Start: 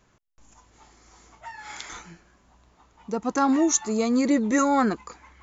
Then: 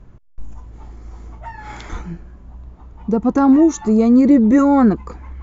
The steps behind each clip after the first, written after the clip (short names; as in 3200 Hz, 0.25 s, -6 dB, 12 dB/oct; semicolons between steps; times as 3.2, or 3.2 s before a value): tilt -4.5 dB/oct; in parallel at +0.5 dB: compressor, threshold -22 dBFS, peak gain reduction 11.5 dB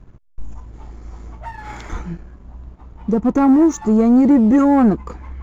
dynamic EQ 3800 Hz, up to -7 dB, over -46 dBFS, Q 1.2; sample leveller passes 1; gain -2.5 dB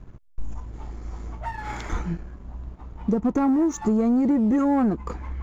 compressor 6:1, threshold -19 dBFS, peak gain reduction 9.5 dB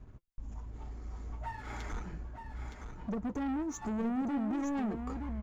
notch comb 170 Hz; soft clip -25.5 dBFS, distortion -9 dB; echo 0.917 s -7.5 dB; gain -6.5 dB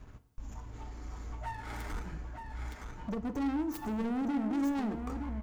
tracing distortion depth 0.24 ms; FDN reverb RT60 0.89 s, high-frequency decay 0.75×, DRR 10.5 dB; mismatched tape noise reduction encoder only